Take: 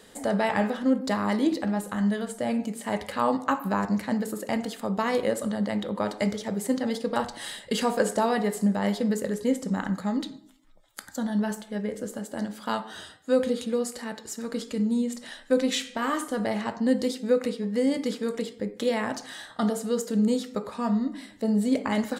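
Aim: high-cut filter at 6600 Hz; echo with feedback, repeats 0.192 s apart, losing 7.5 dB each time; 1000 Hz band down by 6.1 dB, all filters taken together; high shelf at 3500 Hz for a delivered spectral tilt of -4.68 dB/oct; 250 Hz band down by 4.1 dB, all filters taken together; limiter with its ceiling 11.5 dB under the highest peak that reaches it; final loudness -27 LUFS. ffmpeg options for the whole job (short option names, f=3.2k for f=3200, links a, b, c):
-af "lowpass=6.6k,equalizer=f=250:t=o:g=-4.5,equalizer=f=1k:t=o:g=-8,highshelf=f=3.5k:g=3.5,alimiter=limit=-23dB:level=0:latency=1,aecho=1:1:192|384|576|768|960:0.422|0.177|0.0744|0.0312|0.0131,volume=5.5dB"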